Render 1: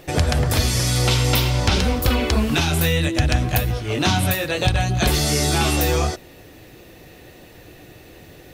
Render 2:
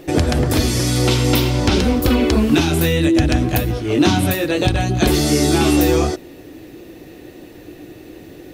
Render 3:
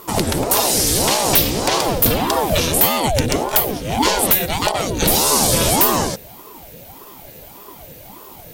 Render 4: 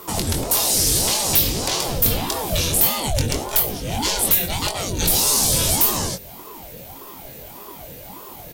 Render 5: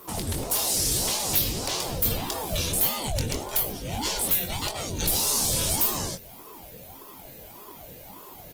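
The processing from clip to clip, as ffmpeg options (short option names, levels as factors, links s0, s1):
-af "equalizer=f=310:t=o:w=0.95:g=12"
-af "aemphasis=mode=production:type=75fm,aeval=exprs='0.75*(abs(mod(val(0)/0.75+3,4)-2)-1)':c=same,aeval=exprs='val(0)*sin(2*PI*450*n/s+450*0.65/1.7*sin(2*PI*1.7*n/s))':c=same"
-filter_complex "[0:a]asoftclip=type=tanh:threshold=0.398,acrossover=split=140|3000[s0][s1][s2];[s1]acompressor=threshold=0.0224:ratio=2[s3];[s0][s3][s2]amix=inputs=3:normalize=0,asplit=2[s4][s5];[s5]adelay=22,volume=0.501[s6];[s4][s6]amix=inputs=2:normalize=0"
-af "volume=0.473" -ar 48000 -c:a libopus -b:a 24k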